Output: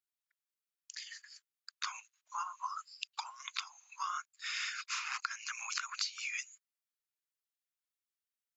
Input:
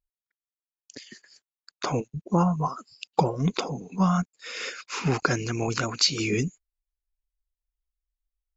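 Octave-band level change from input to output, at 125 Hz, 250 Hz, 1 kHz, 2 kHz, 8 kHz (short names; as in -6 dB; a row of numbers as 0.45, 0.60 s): under -40 dB, under -40 dB, -11.0 dB, -6.0 dB, n/a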